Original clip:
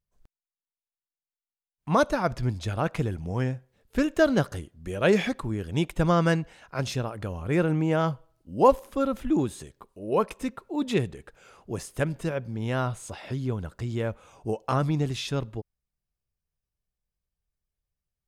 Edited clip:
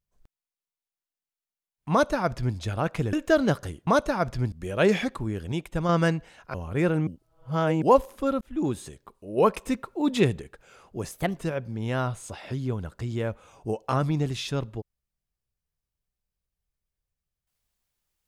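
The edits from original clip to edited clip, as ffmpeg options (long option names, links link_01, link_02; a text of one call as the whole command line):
ffmpeg -i in.wav -filter_complex "[0:a]asplit=14[link_01][link_02][link_03][link_04][link_05][link_06][link_07][link_08][link_09][link_10][link_11][link_12][link_13][link_14];[link_01]atrim=end=3.132[link_15];[link_02]atrim=start=4.018:end=4.762[link_16];[link_03]atrim=start=1.908:end=2.562[link_17];[link_04]atrim=start=4.758:end=5.762[link_18];[link_05]atrim=start=5.758:end=6.132,asetpts=PTS-STARTPTS,volume=-4.5dB[link_19];[link_06]atrim=start=6.128:end=6.782[link_20];[link_07]atrim=start=7.278:end=7.812[link_21];[link_08]atrim=start=7.808:end=8.562,asetpts=PTS-STARTPTS,areverse[link_22];[link_09]atrim=start=8.558:end=9.15,asetpts=PTS-STARTPTS,afade=type=out:start_time=0.588:duration=0.004:curve=hsin[link_23];[link_10]atrim=start=9.15:end=10.112,asetpts=PTS-STARTPTS,afade=type=in:duration=0.3[link_24];[link_11]atrim=start=10.108:end=11.162,asetpts=PTS-STARTPTS,volume=3.5dB[link_25];[link_12]atrim=start=11.158:end=11.854[link_26];[link_13]atrim=start=11.85:end=12.17,asetpts=PTS-STARTPTS,asetrate=53802,aresample=44100,atrim=end_sample=11567,asetpts=PTS-STARTPTS[link_27];[link_14]atrim=start=12.166[link_28];[link_15][link_16]acrossfade=duration=0.004:curve1=hsin:curve2=hsin[link_29];[link_29][link_17]acrossfade=duration=0.004:curve1=hsin:curve2=hsin[link_30];[link_30][link_18]acrossfade=duration=0.004:curve1=hsin:curve2=hsin[link_31];[link_31][link_19]acrossfade=duration=0.004:curve1=hsin:curve2=hsin[link_32];[link_32][link_20]acrossfade=duration=0.004:curve1=hsin:curve2=hsin[link_33];[link_33][link_21]acrossfade=duration=0.004:curve1=hsin:curve2=hsin[link_34];[link_34][link_22]acrossfade=duration=0.004:curve1=hsin:curve2=hsin[link_35];[link_23][link_24]concat=n=2:v=0:a=1[link_36];[link_35][link_36]acrossfade=duration=0.004:curve1=hsin:curve2=hsin[link_37];[link_37][link_25]acrossfade=duration=0.004:curve1=hsin:curve2=hsin[link_38];[link_38][link_26]acrossfade=duration=0.004:curve1=hsin:curve2=hsin[link_39];[link_39][link_27]acrossfade=duration=0.004:curve1=hsin:curve2=hsin[link_40];[link_40][link_28]acrossfade=duration=0.004:curve1=hsin:curve2=hsin" out.wav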